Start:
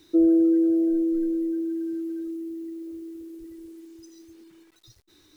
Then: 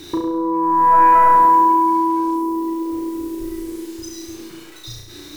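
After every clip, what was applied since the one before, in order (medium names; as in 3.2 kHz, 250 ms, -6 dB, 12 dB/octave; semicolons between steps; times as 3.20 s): compressor with a negative ratio -23 dBFS, ratio -0.5; sine folder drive 11 dB, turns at -16 dBFS; on a send: flutter echo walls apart 5.9 m, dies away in 0.77 s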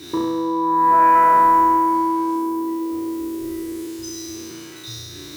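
spectral sustain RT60 2.22 s; high-pass 77 Hz 12 dB/octave; band-stop 830 Hz, Q 12; trim -2 dB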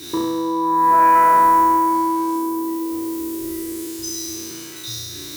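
treble shelf 5 kHz +10.5 dB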